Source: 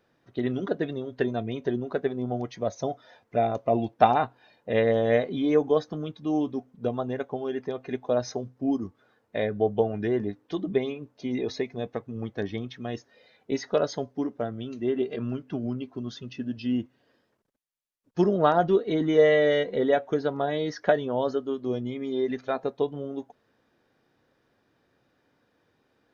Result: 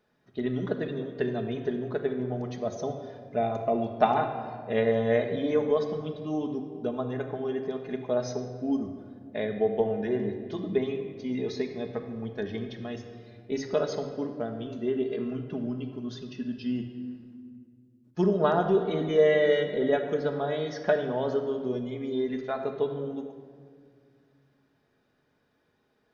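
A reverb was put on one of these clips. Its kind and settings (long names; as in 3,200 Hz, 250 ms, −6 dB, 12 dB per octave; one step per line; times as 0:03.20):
rectangular room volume 2,900 cubic metres, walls mixed, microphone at 1.4 metres
level −4 dB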